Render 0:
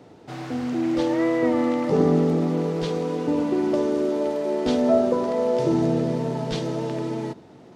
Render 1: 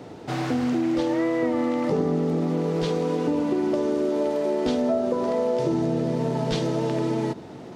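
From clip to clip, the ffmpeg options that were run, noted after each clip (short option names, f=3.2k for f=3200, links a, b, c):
-af "acompressor=threshold=-29dB:ratio=5,volume=7.5dB"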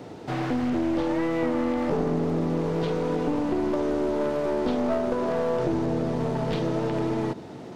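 -filter_complex "[0:a]acrossover=split=3400[a][b];[b]acompressor=threshold=-51dB:ratio=4:attack=1:release=60[c];[a][c]amix=inputs=2:normalize=0,aeval=exprs='clip(val(0),-1,0.0501)':c=same"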